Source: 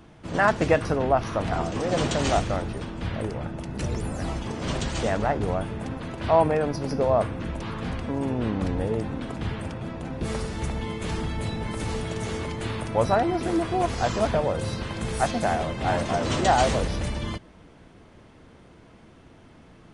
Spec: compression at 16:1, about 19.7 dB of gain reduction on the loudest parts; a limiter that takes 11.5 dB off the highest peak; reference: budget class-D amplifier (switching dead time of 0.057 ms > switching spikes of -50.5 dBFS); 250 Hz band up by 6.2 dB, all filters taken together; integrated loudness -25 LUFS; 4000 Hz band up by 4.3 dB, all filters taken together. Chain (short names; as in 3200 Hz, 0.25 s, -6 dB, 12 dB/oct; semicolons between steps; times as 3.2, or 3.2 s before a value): bell 250 Hz +8 dB; bell 4000 Hz +5.5 dB; compressor 16:1, threshold -33 dBFS; limiter -34 dBFS; switching dead time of 0.057 ms; switching spikes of -50.5 dBFS; gain +18 dB